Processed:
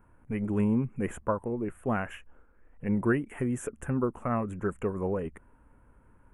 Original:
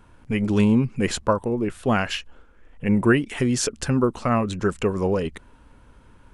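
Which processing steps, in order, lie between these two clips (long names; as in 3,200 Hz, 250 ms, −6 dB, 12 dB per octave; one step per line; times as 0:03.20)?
Butterworth band-reject 4,500 Hz, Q 0.6
level −8 dB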